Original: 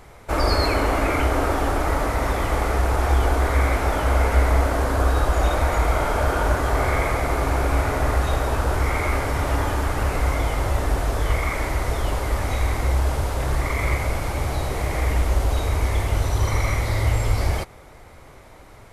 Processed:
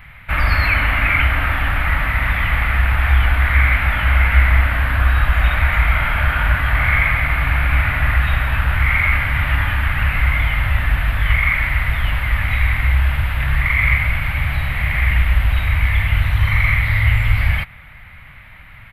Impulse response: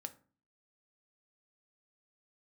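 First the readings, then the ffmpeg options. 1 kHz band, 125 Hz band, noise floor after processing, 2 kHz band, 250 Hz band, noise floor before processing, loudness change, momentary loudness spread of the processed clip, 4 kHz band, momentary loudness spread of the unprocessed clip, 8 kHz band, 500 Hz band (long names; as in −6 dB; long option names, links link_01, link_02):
0.0 dB, +5.5 dB, −40 dBFS, +12.0 dB, −4.0 dB, −45 dBFS, +5.5 dB, 5 LU, +4.5 dB, 5 LU, below −10 dB, −10.0 dB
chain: -af "firequalizer=gain_entry='entry(160,0);entry(390,-25);entry(590,-14);entry(1800,8);entry(2700,7);entry(5900,-27);entry(13000,-2)':delay=0.05:min_phase=1,volume=5.5dB"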